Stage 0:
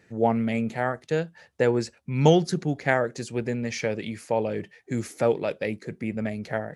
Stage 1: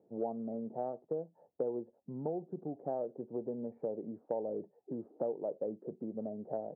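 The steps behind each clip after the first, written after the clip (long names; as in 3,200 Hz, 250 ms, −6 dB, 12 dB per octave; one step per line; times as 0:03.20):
Butterworth low-pass 800 Hz 36 dB per octave
downward compressor 6 to 1, threshold −29 dBFS, peak gain reduction 16 dB
high-pass filter 280 Hz 12 dB per octave
level −2.5 dB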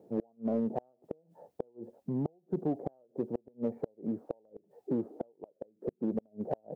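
gate with flip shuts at −29 dBFS, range −37 dB
in parallel at −9 dB: hard clipping −40 dBFS, distortion −8 dB
on the sum: level +7.5 dB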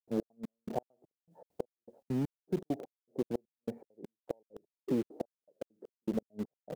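in parallel at −11.5 dB: bit-depth reduction 6 bits, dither none
on the sum: gate pattern ".xx.xx.." 200 BPM −60 dB
level −1.5 dB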